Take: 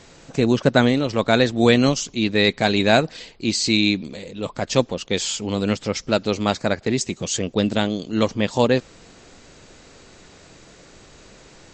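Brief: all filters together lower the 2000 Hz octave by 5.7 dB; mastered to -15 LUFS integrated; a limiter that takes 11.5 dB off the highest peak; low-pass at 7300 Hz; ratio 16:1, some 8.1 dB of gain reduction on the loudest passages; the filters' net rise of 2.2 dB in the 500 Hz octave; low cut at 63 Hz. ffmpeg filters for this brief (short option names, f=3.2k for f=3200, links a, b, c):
-af "highpass=63,lowpass=7.3k,equalizer=f=500:t=o:g=3,equalizer=f=2k:t=o:g=-8,acompressor=threshold=-17dB:ratio=16,volume=15dB,alimiter=limit=-3.5dB:level=0:latency=1"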